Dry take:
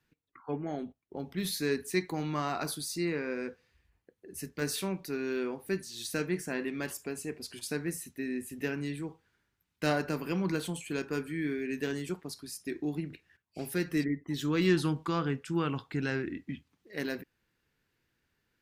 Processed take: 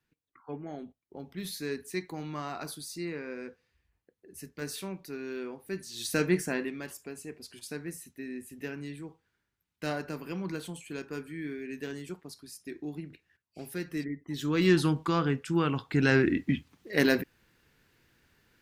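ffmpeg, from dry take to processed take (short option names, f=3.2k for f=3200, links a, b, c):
-af "volume=22dB,afade=t=in:st=5.71:d=0.61:silence=0.281838,afade=t=out:st=6.32:d=0.48:silence=0.281838,afade=t=in:st=14.18:d=0.59:silence=0.398107,afade=t=in:st=15.83:d=0.42:silence=0.421697"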